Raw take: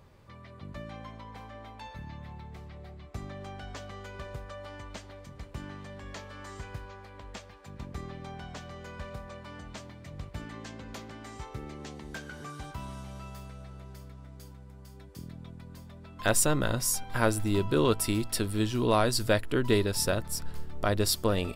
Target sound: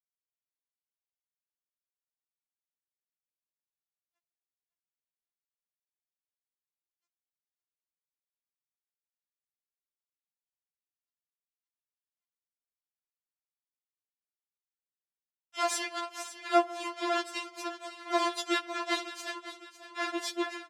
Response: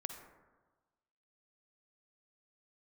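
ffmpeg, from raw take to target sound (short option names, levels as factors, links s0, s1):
-filter_complex "[0:a]adynamicequalizer=threshold=0.00178:dfrequency=4300:dqfactor=6.3:tfrequency=4300:tqfactor=6.3:attack=5:release=100:ratio=0.375:range=2.5:mode=boostabove:tftype=bell,asplit=2[s0][s1];[s1]acompressor=threshold=0.0178:ratio=6,volume=0.891[s2];[s0][s2]amix=inputs=2:normalize=0,aeval=exprs='val(0)+0.0141*sin(2*PI*1100*n/s)':c=same,acrusher=bits=2:mix=0:aa=0.5,asplit=4[s3][s4][s5][s6];[s4]asetrate=33038,aresample=44100,atempo=1.33484,volume=0.891[s7];[s5]asetrate=37084,aresample=44100,atempo=1.18921,volume=0.501[s8];[s6]asetrate=88200,aresample=44100,atempo=0.5,volume=0.447[s9];[s3][s7][s8][s9]amix=inputs=4:normalize=0,aecho=1:1:577|1154|1731|2308:0.211|0.0909|0.0391|0.0168,asplit=2[s10][s11];[1:a]atrim=start_sample=2205,asetrate=42777,aresample=44100[s12];[s11][s12]afir=irnorm=-1:irlink=0,volume=0.355[s13];[s10][s13]amix=inputs=2:normalize=0,asetrate=45938,aresample=44100,highpass=420,lowpass=6500,afftfilt=real='re*4*eq(mod(b,16),0)':imag='im*4*eq(mod(b,16),0)':win_size=2048:overlap=0.75,volume=0.473"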